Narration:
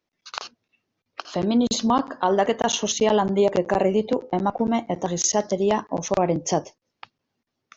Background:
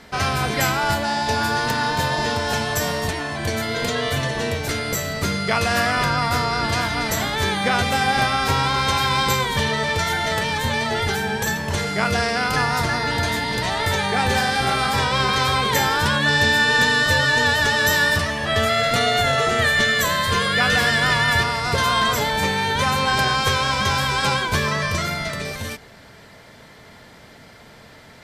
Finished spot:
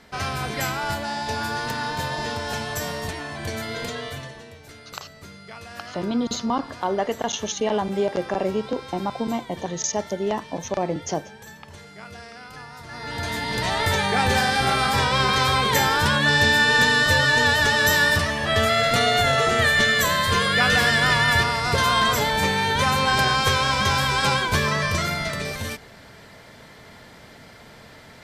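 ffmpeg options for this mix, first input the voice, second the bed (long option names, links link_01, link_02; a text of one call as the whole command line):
ffmpeg -i stem1.wav -i stem2.wav -filter_complex "[0:a]adelay=4600,volume=-4dB[link_01];[1:a]volume=13.5dB,afade=type=out:start_time=3.75:duration=0.7:silence=0.199526,afade=type=in:start_time=12.85:duration=0.89:silence=0.105925[link_02];[link_01][link_02]amix=inputs=2:normalize=0" out.wav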